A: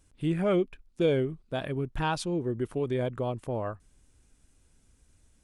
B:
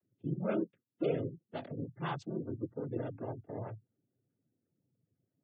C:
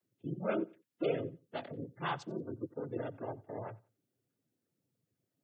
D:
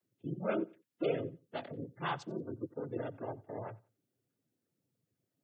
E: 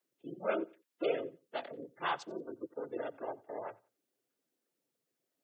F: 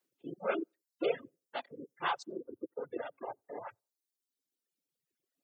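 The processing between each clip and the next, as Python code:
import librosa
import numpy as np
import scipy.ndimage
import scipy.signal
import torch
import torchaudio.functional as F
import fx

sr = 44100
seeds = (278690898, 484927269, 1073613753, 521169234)

y1 = fx.wiener(x, sr, points=41)
y1 = fx.noise_vocoder(y1, sr, seeds[0], bands=16)
y1 = fx.spec_gate(y1, sr, threshold_db=-30, keep='strong')
y1 = y1 * 10.0 ** (-7.0 / 20.0)
y2 = fx.low_shelf(y1, sr, hz=380.0, db=-10.0)
y2 = fx.echo_feedback(y2, sr, ms=89, feedback_pct=26, wet_db=-22.5)
y2 = y2 * 10.0 ** (4.0 / 20.0)
y3 = y2
y4 = scipy.signal.sosfilt(scipy.signal.butter(2, 400.0, 'highpass', fs=sr, output='sos'), y3)
y4 = y4 * 10.0 ** (2.5 / 20.0)
y5 = fx.dereverb_blind(y4, sr, rt60_s=1.9)
y5 = fx.notch(y5, sr, hz=630.0, q=12.0)
y5 = fx.dereverb_blind(y5, sr, rt60_s=0.74)
y5 = y5 * 10.0 ** (2.0 / 20.0)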